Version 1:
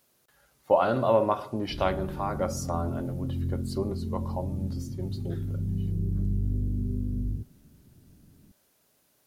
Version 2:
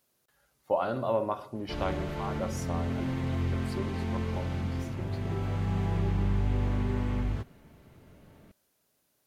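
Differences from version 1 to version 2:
speech -6.0 dB; background: remove inverse Chebyshev low-pass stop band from 1900 Hz, stop band 80 dB

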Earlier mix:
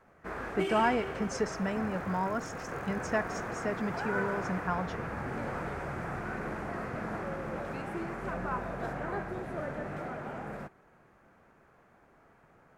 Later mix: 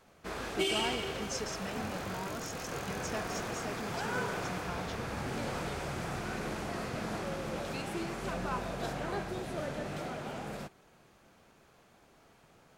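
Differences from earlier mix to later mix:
speech -9.5 dB; master: add resonant high shelf 2500 Hz +11.5 dB, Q 1.5

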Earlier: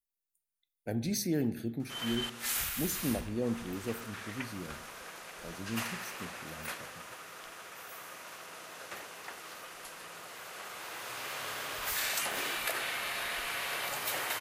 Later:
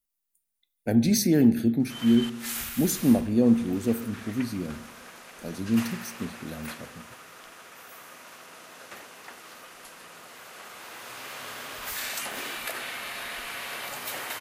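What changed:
speech +8.5 dB; master: add bell 240 Hz +7.5 dB 0.35 oct

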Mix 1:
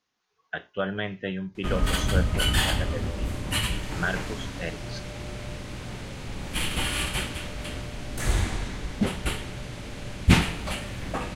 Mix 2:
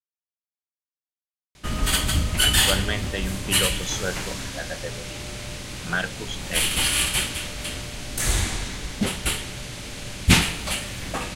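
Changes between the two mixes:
speech: entry +1.90 s; master: add high shelf 2700 Hz +12 dB

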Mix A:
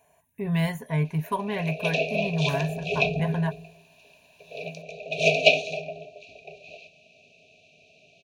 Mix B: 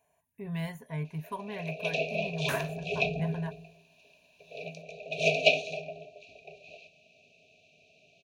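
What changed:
speech -10.0 dB; first sound -5.0 dB; second sound +8.0 dB

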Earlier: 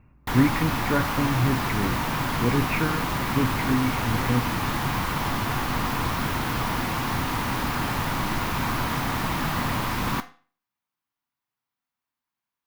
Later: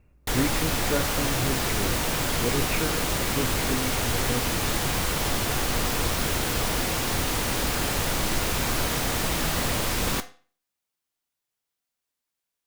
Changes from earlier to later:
background +4.5 dB; master: add graphic EQ 125/250/500/1000/2000/8000 Hz -7/-7/+5/-11/-3/+7 dB

